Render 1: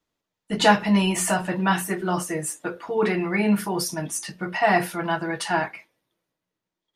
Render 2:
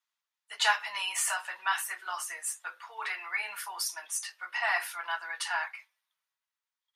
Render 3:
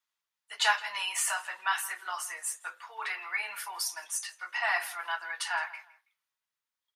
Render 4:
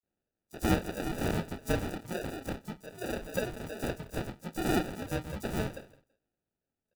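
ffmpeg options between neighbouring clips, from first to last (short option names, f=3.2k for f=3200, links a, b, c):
-af "highpass=f=1k:w=0.5412,highpass=f=1k:w=1.3066,volume=-4dB"
-filter_complex "[0:a]asplit=2[a][b];[b]adelay=164,lowpass=f=4.4k:p=1,volume=-18.5dB,asplit=2[c][d];[d]adelay=164,lowpass=f=4.4k:p=1,volume=0.28[e];[a][c][e]amix=inputs=3:normalize=0"
-filter_complex "[0:a]afftfilt=real='real(if(lt(b,1008),b+24*(1-2*mod(floor(b/24),2)),b),0)':imag='imag(if(lt(b,1008),b+24*(1-2*mod(floor(b/24),2)),b),0)':win_size=2048:overlap=0.75,acrusher=samples=41:mix=1:aa=0.000001,acrossover=split=5200[a][b];[a]adelay=30[c];[c][b]amix=inputs=2:normalize=0"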